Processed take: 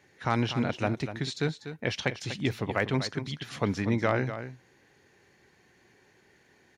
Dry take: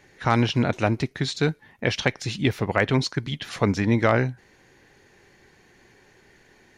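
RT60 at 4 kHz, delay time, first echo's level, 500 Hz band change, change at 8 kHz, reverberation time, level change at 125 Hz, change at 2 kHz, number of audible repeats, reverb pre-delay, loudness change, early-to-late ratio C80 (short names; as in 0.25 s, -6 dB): none, 0.244 s, -11.0 dB, -6.0 dB, -6.0 dB, none, -7.0 dB, -6.0 dB, 1, none, -6.5 dB, none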